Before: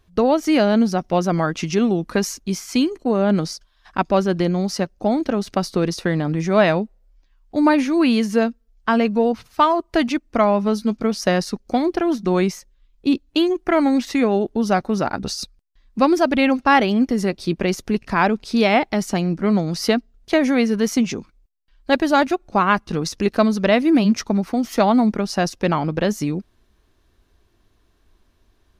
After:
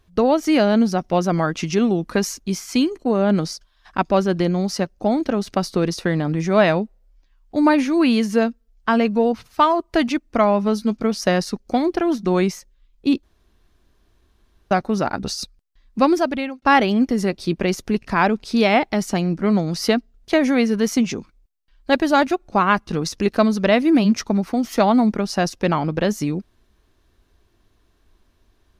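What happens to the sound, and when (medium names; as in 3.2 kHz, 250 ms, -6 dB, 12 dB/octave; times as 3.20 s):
13.23–14.71 s: room tone
16.10–16.62 s: fade out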